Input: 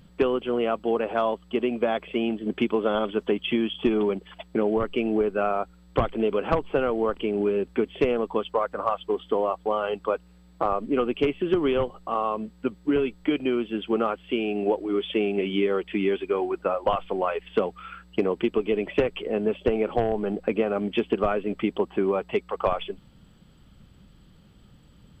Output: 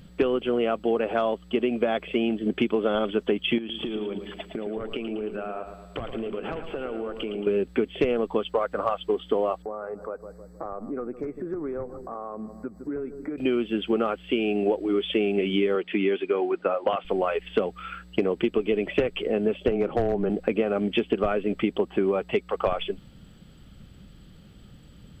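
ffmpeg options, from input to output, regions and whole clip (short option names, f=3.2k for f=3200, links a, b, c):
-filter_complex "[0:a]asettb=1/sr,asplit=3[a][b][c];[a]atrim=end=3.584[d];[b]atrim=start=3.58:end=7.47,asetpts=PTS-STARTPTS,afade=t=in:d=0.004:c=qsin,afade=t=out:st=3.886:d=0.004:c=qsin,acompressor=threshold=-32dB:ratio=10:attack=3.2:release=140:knee=1:detection=peak,aecho=1:1:112|224|336|448|560|672:0.376|0.195|0.102|0.0528|0.0275|0.0143,atrim=end_sample=171549[e];[c]atrim=start=7.466[f];[d][e]acrossfade=d=0.004:c1=hsin:c2=qsin[g];[g][f]acrossfade=d=0.004:c1=qsin:c2=hsin,asettb=1/sr,asplit=3[h][i][j];[h]atrim=end=9.624[k];[i]atrim=start=9.62:end=13.38,asetpts=PTS-STARTPTS,afade=t=in:d=0.004:c=qsin,afade=t=out:st=3.756:d=0.004:c=qsin,asplit=2[l][m];[m]adelay=156,lowpass=f=870:p=1,volume=-18dB,asplit=2[n][o];[o]adelay=156,lowpass=f=870:p=1,volume=0.54,asplit=2[p][q];[q]adelay=156,lowpass=f=870:p=1,volume=0.54,asplit=2[r][s];[s]adelay=156,lowpass=f=870:p=1,volume=0.54,asplit=2[t][u];[u]adelay=156,lowpass=f=870:p=1,volume=0.54[v];[l][n][p][r][t][v]amix=inputs=6:normalize=0,atrim=end_sample=165816,acompressor=threshold=-39dB:ratio=2.5:attack=3.2:release=140:knee=1:detection=peak,asuperstop=centerf=3000:order=4:qfactor=0.89[w];[j]atrim=start=13.376[x];[k][w]acrossfade=d=0.004:c1=hsin:c2=qsin[y];[y][x]acrossfade=d=0.004:c1=qsin:c2=hsin,asettb=1/sr,asplit=3[z][aa][ab];[z]atrim=end=15.754[ac];[aa]atrim=start=15.75:end=17.05,asetpts=PTS-STARTPTS,afade=t=in:d=0.004:c=qsin,afade=t=out:st=1.296:d=0.004:c=qsin,highpass=180,lowpass=3k,aemphasis=mode=production:type=50fm[ad];[ab]atrim=start=17.046[ae];[ac][ad]acrossfade=d=0.004:c1=hsin:c2=qsin[af];[af][ae]acrossfade=d=0.004:c1=qsin:c2=hsin,asettb=1/sr,asplit=3[ag][ah][ai];[ag]atrim=end=19.714[aj];[ah]atrim=start=19.71:end=20.3,asetpts=PTS-STARTPTS,afade=t=in:d=0.004:c=qsin,afade=t=out:st=0.586:d=0.004:c=qsin,highshelf=f=2.7k:g=-11.5,afreqshift=-13,aeval=exprs='clip(val(0),-1,0.112)':c=same[ak];[ai]atrim=start=20.296[al];[aj][ak]acrossfade=d=0.004:c1=hsin:c2=qsin[am];[am][al]acrossfade=d=0.004:c1=qsin:c2=hsin,equalizer=f=980:t=o:w=0.5:g=-6,acompressor=threshold=-27dB:ratio=2,volume=4.5dB"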